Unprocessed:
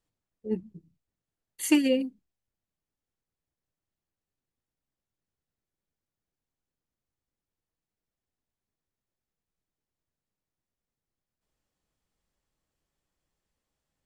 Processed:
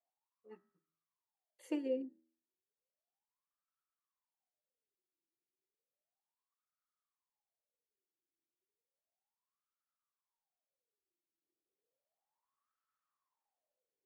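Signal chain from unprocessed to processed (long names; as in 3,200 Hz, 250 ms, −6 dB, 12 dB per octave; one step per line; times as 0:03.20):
spectral tilt +2.5 dB per octave
hum removal 80.9 Hz, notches 24
LFO wah 0.33 Hz 330–1,300 Hz, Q 12
level +9.5 dB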